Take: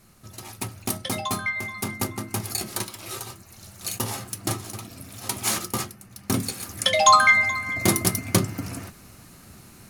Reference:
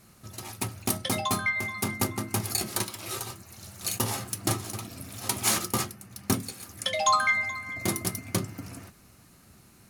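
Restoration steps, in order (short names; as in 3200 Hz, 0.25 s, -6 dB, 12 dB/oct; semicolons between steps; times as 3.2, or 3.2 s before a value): expander -40 dBFS, range -21 dB; gain 0 dB, from 6.34 s -8 dB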